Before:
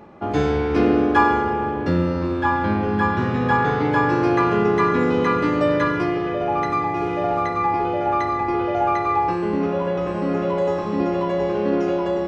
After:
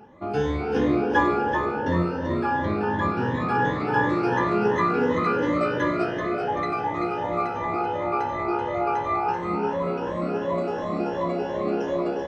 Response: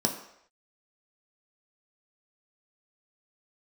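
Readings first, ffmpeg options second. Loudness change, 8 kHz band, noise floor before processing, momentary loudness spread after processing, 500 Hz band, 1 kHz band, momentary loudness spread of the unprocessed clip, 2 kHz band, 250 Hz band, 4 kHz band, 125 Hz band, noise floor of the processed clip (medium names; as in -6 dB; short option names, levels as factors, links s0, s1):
-4.0 dB, no reading, -25 dBFS, 5 LU, -4.0 dB, -4.0 dB, 5 LU, -3.0 dB, -5.0 dB, -4.0 dB, -5.0 dB, -30 dBFS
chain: -filter_complex "[0:a]afftfilt=real='re*pow(10,14/40*sin(2*PI*(1.1*log(max(b,1)*sr/1024/100)/log(2)-(2.8)*(pts-256)/sr)))':imag='im*pow(10,14/40*sin(2*PI*(1.1*log(max(b,1)*sr/1024/100)/log(2)-(2.8)*(pts-256)/sr)))':win_size=1024:overlap=0.75,asplit=2[s0][s1];[s1]asplit=5[s2][s3][s4][s5][s6];[s2]adelay=384,afreqshift=63,volume=0.501[s7];[s3]adelay=768,afreqshift=126,volume=0.226[s8];[s4]adelay=1152,afreqshift=189,volume=0.101[s9];[s5]adelay=1536,afreqshift=252,volume=0.0457[s10];[s6]adelay=1920,afreqshift=315,volume=0.0207[s11];[s7][s8][s9][s10][s11]amix=inputs=5:normalize=0[s12];[s0][s12]amix=inputs=2:normalize=0,volume=0.422"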